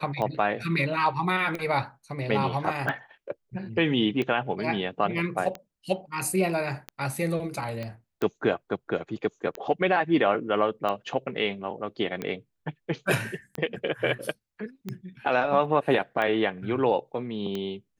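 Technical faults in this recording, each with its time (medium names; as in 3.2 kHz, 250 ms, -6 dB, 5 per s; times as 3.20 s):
tick 45 rpm -18 dBFS
7.83 s: pop -22 dBFS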